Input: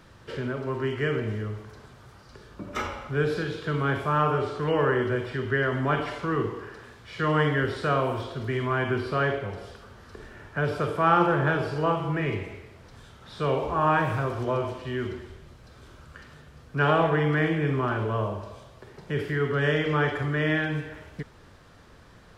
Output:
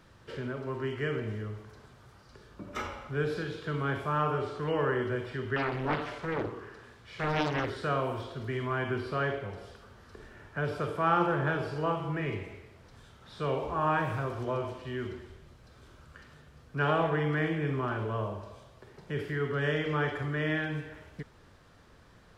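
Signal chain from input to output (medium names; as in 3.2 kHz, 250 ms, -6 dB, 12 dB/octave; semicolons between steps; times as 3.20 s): 5.56–7.70 s: loudspeaker Doppler distortion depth 0.97 ms; trim -5.5 dB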